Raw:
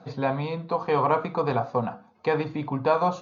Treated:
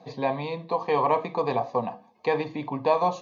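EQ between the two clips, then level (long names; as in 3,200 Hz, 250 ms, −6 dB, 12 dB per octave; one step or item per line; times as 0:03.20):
high-pass filter 290 Hz 6 dB per octave
Butterworth band-reject 1,400 Hz, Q 2.9
+1.0 dB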